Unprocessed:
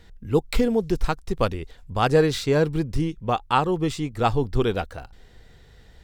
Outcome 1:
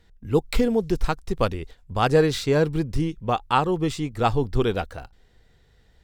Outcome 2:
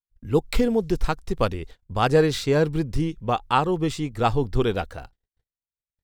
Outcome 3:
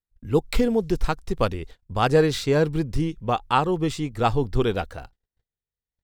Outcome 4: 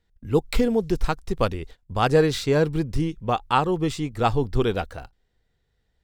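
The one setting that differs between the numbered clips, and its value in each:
gate, range: -8 dB, -57 dB, -45 dB, -21 dB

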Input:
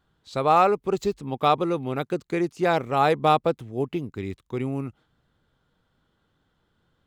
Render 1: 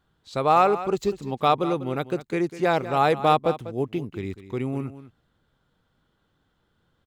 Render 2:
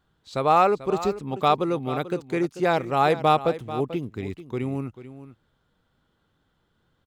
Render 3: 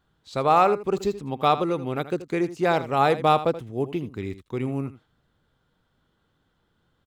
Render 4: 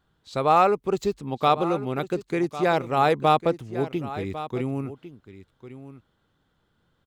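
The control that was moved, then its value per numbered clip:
delay, time: 197 ms, 440 ms, 80 ms, 1101 ms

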